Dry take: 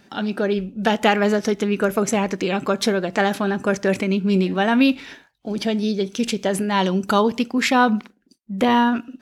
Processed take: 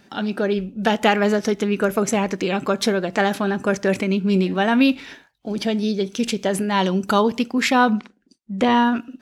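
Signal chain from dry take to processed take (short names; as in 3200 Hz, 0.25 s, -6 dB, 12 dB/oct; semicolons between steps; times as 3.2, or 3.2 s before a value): 7.95–8.84 LPF 9100 Hz 24 dB/oct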